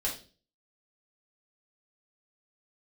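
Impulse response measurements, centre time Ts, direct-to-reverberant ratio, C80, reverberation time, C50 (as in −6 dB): 23 ms, −4.5 dB, 13.5 dB, 0.35 s, 8.0 dB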